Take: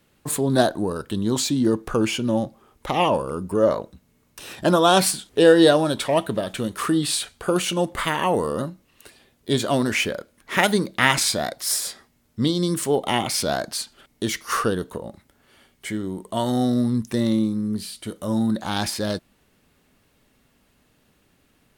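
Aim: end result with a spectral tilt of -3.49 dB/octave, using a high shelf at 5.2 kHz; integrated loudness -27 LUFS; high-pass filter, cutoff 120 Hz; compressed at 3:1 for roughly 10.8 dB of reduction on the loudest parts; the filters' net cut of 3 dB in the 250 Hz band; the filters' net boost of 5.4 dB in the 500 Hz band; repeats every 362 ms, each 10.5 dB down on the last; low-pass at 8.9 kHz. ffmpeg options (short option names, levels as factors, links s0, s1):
-af "highpass=120,lowpass=8900,equalizer=f=250:t=o:g=-7,equalizer=f=500:t=o:g=8,highshelf=f=5200:g=3,acompressor=threshold=0.112:ratio=3,aecho=1:1:362|724|1086:0.299|0.0896|0.0269,volume=0.75"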